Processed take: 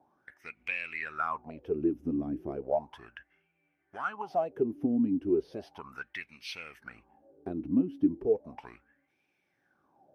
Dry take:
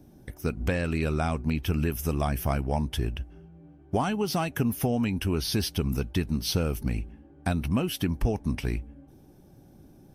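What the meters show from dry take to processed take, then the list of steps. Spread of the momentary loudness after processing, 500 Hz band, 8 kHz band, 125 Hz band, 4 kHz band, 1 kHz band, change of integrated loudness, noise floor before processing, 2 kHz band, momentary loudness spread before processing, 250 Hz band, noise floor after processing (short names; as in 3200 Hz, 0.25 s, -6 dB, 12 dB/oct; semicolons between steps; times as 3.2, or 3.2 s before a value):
20 LU, -1.0 dB, under -20 dB, -18.5 dB, -15.0 dB, -4.0 dB, -3.5 dB, -54 dBFS, -2.5 dB, 7 LU, -2.5 dB, -77 dBFS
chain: in parallel at -9 dB: one-sided clip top -24.5 dBFS; on the sum: wah 0.35 Hz 270–2400 Hz, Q 9.9; gain +7.5 dB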